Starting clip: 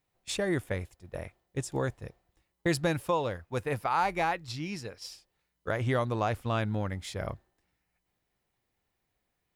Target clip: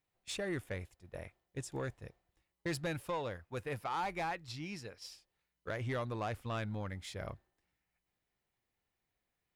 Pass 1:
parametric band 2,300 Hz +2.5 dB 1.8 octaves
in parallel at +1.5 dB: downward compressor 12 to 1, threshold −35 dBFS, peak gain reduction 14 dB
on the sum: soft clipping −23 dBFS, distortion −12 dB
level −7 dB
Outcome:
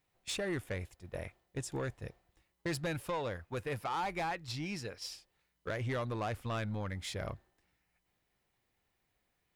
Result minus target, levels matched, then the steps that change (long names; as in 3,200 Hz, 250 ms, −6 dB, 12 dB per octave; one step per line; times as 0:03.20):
downward compressor: peak gain reduction +14 dB
remove: downward compressor 12 to 1, threshold −35 dBFS, peak gain reduction 14 dB